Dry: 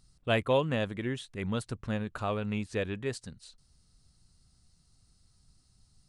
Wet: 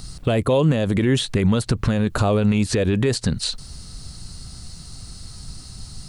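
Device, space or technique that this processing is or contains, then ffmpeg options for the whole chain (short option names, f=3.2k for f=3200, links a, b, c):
mastering chain: -filter_complex "[0:a]equalizer=f=4.3k:t=o:w=0.21:g=3.5,acrossover=split=690|4700[a][b][c];[a]acompressor=threshold=-34dB:ratio=4[d];[b]acompressor=threshold=-49dB:ratio=4[e];[c]acompressor=threshold=-56dB:ratio=4[f];[d][e][f]amix=inputs=3:normalize=0,acompressor=threshold=-40dB:ratio=2.5,alimiter=level_in=35.5dB:limit=-1dB:release=50:level=0:latency=1,volume=-8dB"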